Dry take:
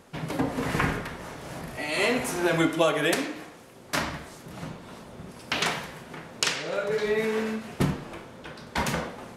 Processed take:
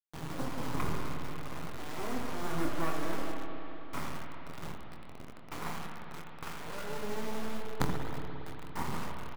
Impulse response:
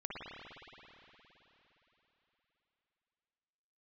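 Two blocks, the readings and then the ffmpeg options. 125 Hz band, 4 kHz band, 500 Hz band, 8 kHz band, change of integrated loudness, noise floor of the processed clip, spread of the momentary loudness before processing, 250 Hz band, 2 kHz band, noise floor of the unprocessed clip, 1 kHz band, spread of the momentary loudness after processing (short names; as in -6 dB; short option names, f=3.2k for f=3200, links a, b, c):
-7.0 dB, -14.5 dB, -13.0 dB, -13.0 dB, -12.0 dB, -44 dBFS, 18 LU, -9.0 dB, -13.5 dB, -48 dBFS, -7.0 dB, 11 LU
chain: -filter_complex "[0:a]lowpass=f=1.4k:w=0.5412,lowpass=f=1.4k:w=1.3066,aecho=1:1:0.9:0.57,acrusher=bits=3:dc=4:mix=0:aa=0.000001,asplit=2[a][b];[1:a]atrim=start_sample=2205,adelay=24[c];[b][c]afir=irnorm=-1:irlink=0,volume=-2.5dB[d];[a][d]amix=inputs=2:normalize=0,volume=-7.5dB"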